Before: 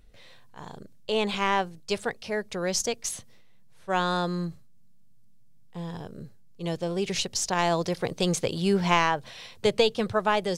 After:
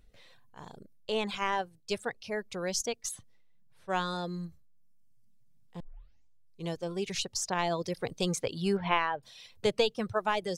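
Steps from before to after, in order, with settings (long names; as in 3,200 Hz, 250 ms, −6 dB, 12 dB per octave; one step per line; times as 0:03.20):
0:08.77–0:09.23: low-pass filter 3,500 Hz 24 dB per octave
reverb reduction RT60 0.99 s
0:05.80: tape start 0.86 s
level −4.5 dB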